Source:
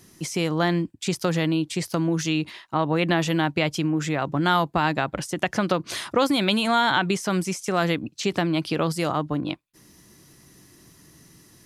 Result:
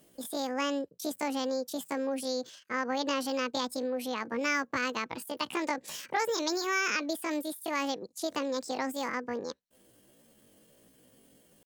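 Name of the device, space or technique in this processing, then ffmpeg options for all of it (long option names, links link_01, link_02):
chipmunk voice: -af "asetrate=72056,aresample=44100,atempo=0.612027,volume=-9dB"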